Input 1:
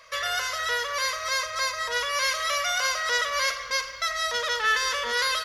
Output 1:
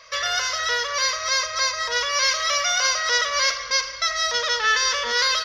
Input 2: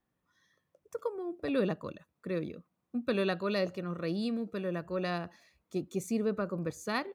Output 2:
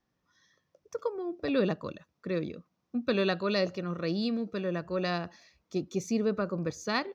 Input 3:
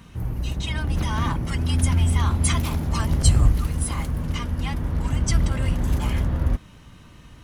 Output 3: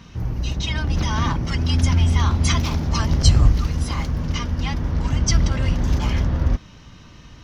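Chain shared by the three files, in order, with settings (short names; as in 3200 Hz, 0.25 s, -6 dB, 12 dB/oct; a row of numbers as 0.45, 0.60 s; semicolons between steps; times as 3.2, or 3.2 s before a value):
resonant high shelf 7200 Hz -9 dB, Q 3; gain +2.5 dB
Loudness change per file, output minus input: +4.5, +2.5, +2.5 LU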